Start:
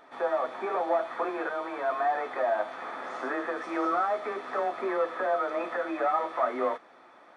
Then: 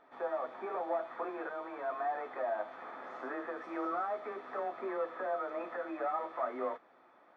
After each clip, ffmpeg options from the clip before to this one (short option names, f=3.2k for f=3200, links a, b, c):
-af "aemphasis=mode=reproduction:type=75kf,volume=-7.5dB"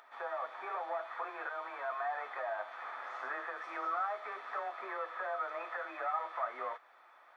-filter_complex "[0:a]asplit=2[a][b];[b]alimiter=level_in=7dB:limit=-24dB:level=0:latency=1:release=196,volume=-7dB,volume=-0.5dB[c];[a][c]amix=inputs=2:normalize=0,acompressor=mode=upward:threshold=-54dB:ratio=2.5,highpass=1k"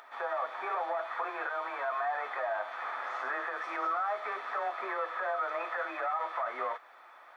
-af "alimiter=level_in=7dB:limit=-24dB:level=0:latency=1:release=40,volume=-7dB,volume=6.5dB"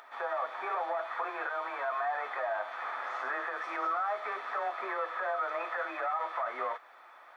-af anull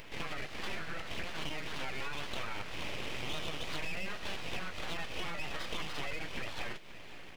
-filter_complex "[0:a]acrossover=split=2100[a][b];[a]acompressor=threshold=-42dB:ratio=6[c];[c][b]amix=inputs=2:normalize=0,aeval=exprs='abs(val(0))':c=same,aecho=1:1:529:0.168,volume=5.5dB"